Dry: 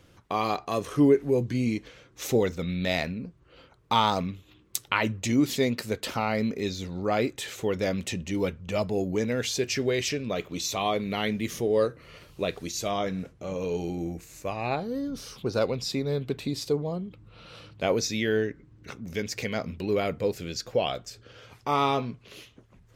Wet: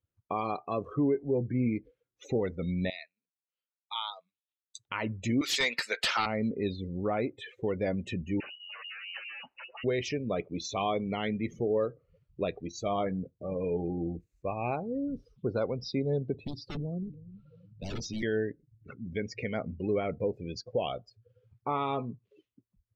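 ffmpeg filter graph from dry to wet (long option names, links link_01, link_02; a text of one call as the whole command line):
ffmpeg -i in.wav -filter_complex "[0:a]asettb=1/sr,asplit=3[link_01][link_02][link_03];[link_01]atrim=end=2.904[link_04];[link_02]atrim=start=2.9:end=4.76,asetpts=PTS-STARTPTS,afade=type=in:duration=0.004:curve=qsin,afade=type=out:start_time=1.856:duration=0.004:curve=qsin,bandpass=frequency=4800:width_type=q:width=0.93,bandreject=frequency=5400:width=5.5[link_05];[link_03]atrim=start=4.756[link_06];[link_04][link_05]acrossfade=duration=0.004:curve1=hsin:curve2=qsin[link_07];[link_07][link_06]acrossfade=duration=0.004:curve1=qsin:curve2=hsin,asettb=1/sr,asplit=3[link_08][link_09][link_10];[link_08]atrim=end=5.414[link_11];[link_09]atrim=start=5.41:end=6.26,asetpts=PTS-STARTPTS,afade=type=in:duration=0.004:curve=qsin,afade=type=out:start_time=0.846:duration=0.004:curve=qsin,highpass=1300,aeval=exprs='0.158*sin(PI/2*3.55*val(0)/0.158)':channel_layout=same[link_12];[link_10]atrim=start=6.256[link_13];[link_11][link_12]acrossfade=duration=0.004:curve1=hsin:curve2=qsin[link_14];[link_14][link_13]acrossfade=duration=0.004:curve1=qsin:curve2=hsin,asettb=1/sr,asplit=3[link_15][link_16][link_17];[link_15]atrim=end=8.404[link_18];[link_16]atrim=start=8.4:end=9.84,asetpts=PTS-STARTPTS,afade=type=in:duration=0.004:curve=qsin,afade=type=out:start_time=1.436:duration=0.004:curve=qsin,aeval=exprs='0.211*sin(PI/2*7.08*val(0)/0.211)':channel_layout=same,lowpass=frequency=2600:width_type=q:width=0.5098,lowpass=frequency=2600:width_type=q:width=0.6013,lowpass=frequency=2600:width_type=q:width=0.9,lowpass=frequency=2600:width_type=q:width=2.563,afreqshift=-3000,agate=range=-21dB:threshold=-14dB:ratio=16:release=100:detection=peak[link_19];[link_17]atrim=start=9.836[link_20];[link_18][link_19]acrossfade=duration=0.004:curve1=hsin:curve2=qsin[link_21];[link_21][link_20]acrossfade=duration=0.004:curve1=qsin:curve2=hsin,asettb=1/sr,asplit=3[link_22][link_23][link_24];[link_22]atrim=end=16.344[link_25];[link_23]atrim=start=16.34:end=18.23,asetpts=PTS-STARTPTS,afade=type=in:duration=0.004:curve=qsin,afade=type=out:start_time=1.886:duration=0.004:curve=qsin,aeval=exprs='(mod(12.6*val(0)+1,2)-1)/12.6':channel_layout=same,acrossover=split=310|3000[link_26][link_27][link_28];[link_27]acompressor=threshold=-44dB:ratio=3:attack=3.2:release=140:knee=2.83:detection=peak[link_29];[link_26][link_29][link_28]amix=inputs=3:normalize=0,asplit=2[link_30][link_31];[link_31]adelay=324,lowpass=frequency=1300:poles=1,volume=-13.5dB,asplit=2[link_32][link_33];[link_33]adelay=324,lowpass=frequency=1300:poles=1,volume=0.4,asplit=2[link_34][link_35];[link_35]adelay=324,lowpass=frequency=1300:poles=1,volume=0.4,asplit=2[link_36][link_37];[link_37]adelay=324,lowpass=frequency=1300:poles=1,volume=0.4[link_38];[link_30][link_32][link_34][link_36][link_38]amix=inputs=5:normalize=0,atrim=end_sample=83349[link_39];[link_24]atrim=start=18.226[link_40];[link_25][link_39]acrossfade=duration=0.004:curve1=hsin:curve2=qsin[link_41];[link_41][link_40]acrossfade=duration=0.004:curve1=qsin:curve2=hsin,aemphasis=mode=reproduction:type=cd,afftdn=noise_reduction=34:noise_floor=-36,alimiter=limit=-18dB:level=0:latency=1:release=311,volume=-1.5dB" out.wav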